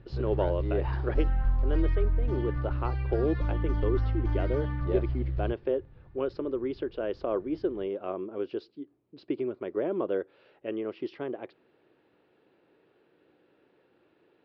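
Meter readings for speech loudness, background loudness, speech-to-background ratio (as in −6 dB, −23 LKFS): −33.0 LKFS, −31.5 LKFS, −1.5 dB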